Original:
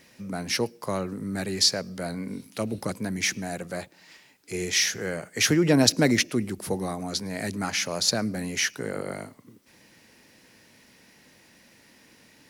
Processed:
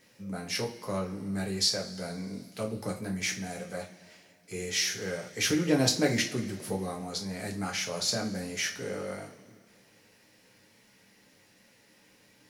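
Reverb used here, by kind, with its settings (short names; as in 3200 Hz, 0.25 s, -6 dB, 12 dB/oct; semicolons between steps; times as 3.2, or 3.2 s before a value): two-slope reverb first 0.28 s, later 2.4 s, from -21 dB, DRR -1 dB; gain -8.5 dB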